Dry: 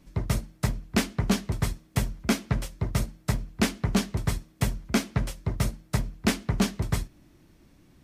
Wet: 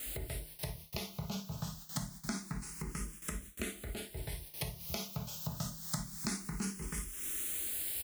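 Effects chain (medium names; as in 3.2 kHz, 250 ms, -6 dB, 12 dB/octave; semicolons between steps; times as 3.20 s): comb 4.8 ms, depth 42%; gated-style reverb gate 80 ms flat, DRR -0.5 dB; added noise white -45 dBFS; dynamic bell 9.8 kHz, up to +5 dB, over -53 dBFS, Q 7.9; compression 8:1, threshold -35 dBFS, peak gain reduction 18.5 dB; treble shelf 4.3 kHz +6.5 dB, from 4.80 s +11.5 dB; gate with hold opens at -34 dBFS; barber-pole phaser +0.26 Hz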